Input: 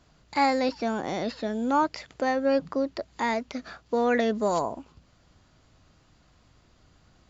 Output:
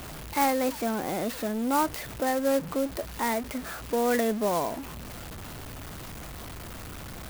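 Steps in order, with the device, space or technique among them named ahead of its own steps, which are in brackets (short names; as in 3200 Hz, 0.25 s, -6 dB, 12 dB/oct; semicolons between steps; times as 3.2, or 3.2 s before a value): early CD player with a faulty converter (zero-crossing step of -32 dBFS; clock jitter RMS 0.049 ms); gain -2.5 dB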